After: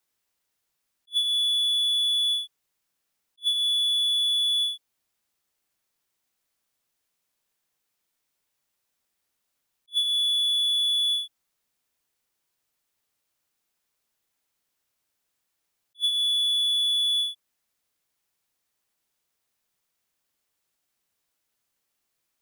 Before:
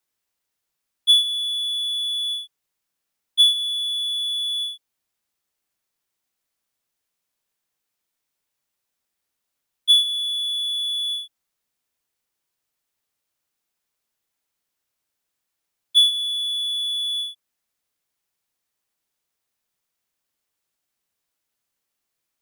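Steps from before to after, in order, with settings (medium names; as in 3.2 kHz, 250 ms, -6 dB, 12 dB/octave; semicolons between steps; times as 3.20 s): compression, threshold -19 dBFS, peak gain reduction 8 dB; attacks held to a fixed rise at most 510 dB/s; trim +1.5 dB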